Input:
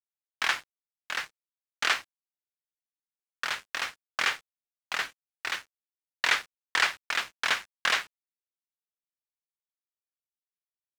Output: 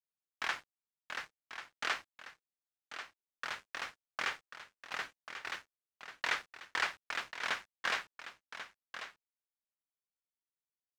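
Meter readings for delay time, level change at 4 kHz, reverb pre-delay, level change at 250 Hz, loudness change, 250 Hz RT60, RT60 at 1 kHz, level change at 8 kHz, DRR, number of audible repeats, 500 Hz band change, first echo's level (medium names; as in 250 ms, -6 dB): 1090 ms, -10.5 dB, no reverb, -5.0 dB, -10.0 dB, no reverb, no reverb, -11.5 dB, no reverb, 1, -5.5 dB, -10.5 dB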